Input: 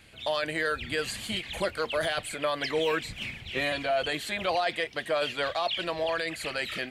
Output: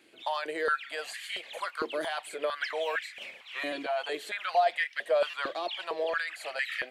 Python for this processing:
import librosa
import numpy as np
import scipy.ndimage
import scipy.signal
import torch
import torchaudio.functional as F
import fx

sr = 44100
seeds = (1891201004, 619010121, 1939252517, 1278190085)

y = fx.buffer_glitch(x, sr, at_s=(5.3,), block=256, repeats=5)
y = fx.filter_held_highpass(y, sr, hz=4.4, low_hz=330.0, high_hz=1800.0)
y = F.gain(torch.from_numpy(y), -7.0).numpy()